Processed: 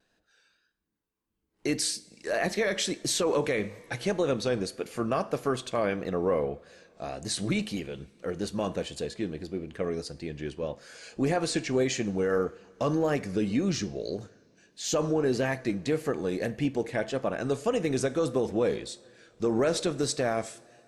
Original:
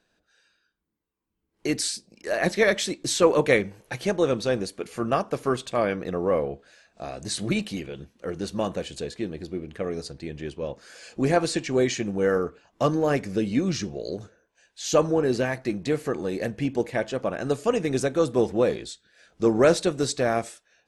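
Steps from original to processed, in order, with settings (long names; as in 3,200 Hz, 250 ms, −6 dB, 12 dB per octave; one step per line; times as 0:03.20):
coupled-rooms reverb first 0.51 s, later 3.3 s, from −18 dB, DRR 16 dB
pitch vibrato 1.7 Hz 50 cents
brickwall limiter −16 dBFS, peak gain reduction 11 dB
level −1.5 dB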